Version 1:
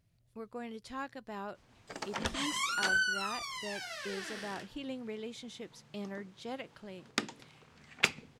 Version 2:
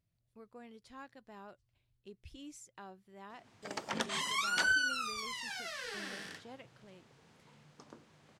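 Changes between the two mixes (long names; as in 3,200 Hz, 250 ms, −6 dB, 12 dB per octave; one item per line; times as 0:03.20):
speech −10.0 dB
background: entry +1.75 s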